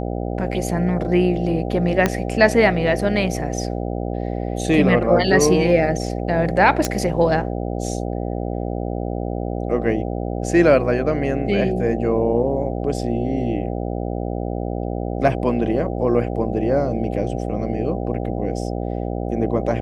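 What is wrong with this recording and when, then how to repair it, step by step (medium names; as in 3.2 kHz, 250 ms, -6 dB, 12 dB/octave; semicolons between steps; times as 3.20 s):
buzz 60 Hz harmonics 13 -25 dBFS
2.06 s: pop -4 dBFS
6.85 s: pop -5 dBFS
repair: de-click; de-hum 60 Hz, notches 13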